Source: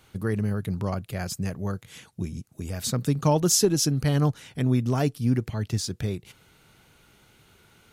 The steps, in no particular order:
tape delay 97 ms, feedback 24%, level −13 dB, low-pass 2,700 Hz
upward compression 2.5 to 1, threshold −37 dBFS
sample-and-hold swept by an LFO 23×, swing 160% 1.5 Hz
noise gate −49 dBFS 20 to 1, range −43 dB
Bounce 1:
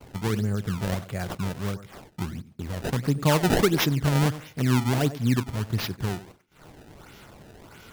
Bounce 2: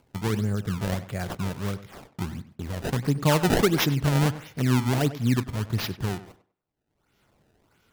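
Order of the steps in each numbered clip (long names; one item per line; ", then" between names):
upward compression, then noise gate, then tape delay, then sample-and-hold swept by an LFO
sample-and-hold swept by an LFO, then noise gate, then upward compression, then tape delay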